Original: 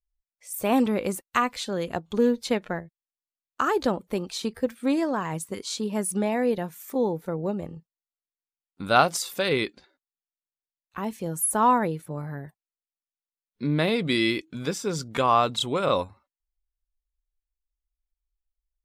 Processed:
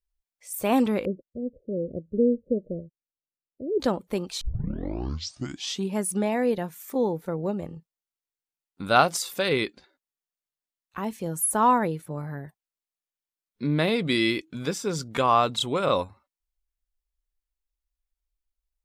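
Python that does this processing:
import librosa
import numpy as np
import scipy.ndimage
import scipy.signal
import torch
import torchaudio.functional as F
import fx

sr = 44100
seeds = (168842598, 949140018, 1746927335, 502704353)

y = fx.steep_lowpass(x, sr, hz=590.0, slope=96, at=(1.05, 3.8))
y = fx.edit(y, sr, fx.tape_start(start_s=4.41, length_s=1.57), tone=tone)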